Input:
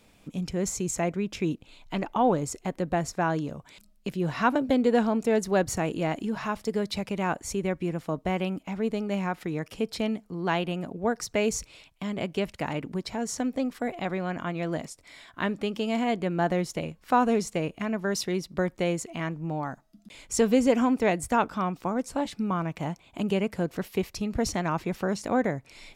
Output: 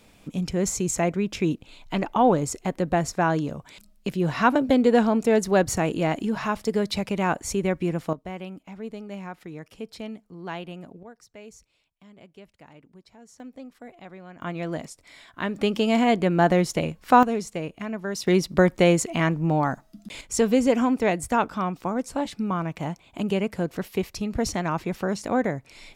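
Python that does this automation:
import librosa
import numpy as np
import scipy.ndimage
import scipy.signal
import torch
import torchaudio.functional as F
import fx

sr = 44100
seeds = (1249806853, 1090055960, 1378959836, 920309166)

y = fx.gain(x, sr, db=fx.steps((0.0, 4.0), (8.13, -7.5), (11.03, -19.0), (13.4, -13.0), (14.42, 0.0), (15.56, 6.5), (17.23, -2.0), (18.27, 9.0), (20.21, 1.5)))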